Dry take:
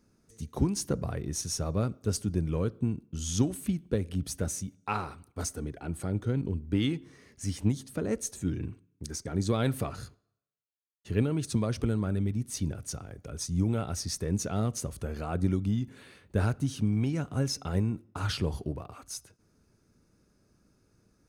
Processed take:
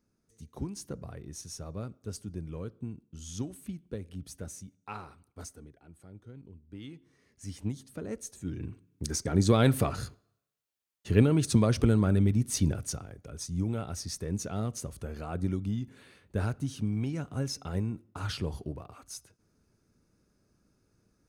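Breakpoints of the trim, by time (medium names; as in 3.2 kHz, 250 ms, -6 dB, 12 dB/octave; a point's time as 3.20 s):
5.42 s -9.5 dB
5.86 s -19 dB
6.66 s -19 dB
7.55 s -7 dB
8.40 s -7 dB
9.04 s +5 dB
12.75 s +5 dB
13.19 s -3.5 dB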